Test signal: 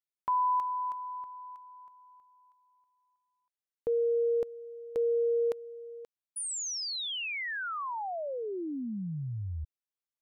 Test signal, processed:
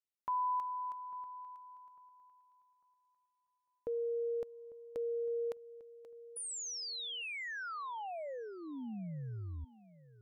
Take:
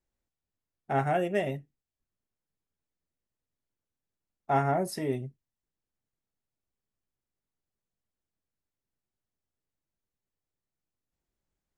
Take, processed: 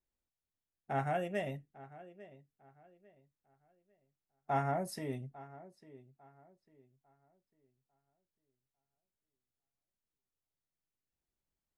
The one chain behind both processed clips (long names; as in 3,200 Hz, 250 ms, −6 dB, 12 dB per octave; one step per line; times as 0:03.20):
feedback echo with a low-pass in the loop 849 ms, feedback 31%, low-pass 3,500 Hz, level −18.5 dB
dynamic equaliser 370 Hz, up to −6 dB, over −45 dBFS, Q 3.2
level −6.5 dB